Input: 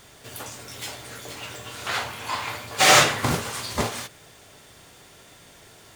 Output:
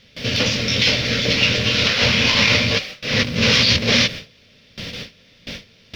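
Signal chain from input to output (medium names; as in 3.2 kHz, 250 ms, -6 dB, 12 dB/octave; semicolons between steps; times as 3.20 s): square wave that keeps the level; FFT filter 150 Hz 0 dB, 220 Hz +7 dB, 360 Hz -10 dB, 510 Hz +2 dB, 790 Hz -16 dB, 1.4 kHz -8 dB, 2.4 kHz +6 dB, 5.5 kHz +5 dB, 8.2 kHz -28 dB; compressor with a negative ratio -28 dBFS, ratio -1; added noise pink -58 dBFS; gate with hold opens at -27 dBFS; trim +8.5 dB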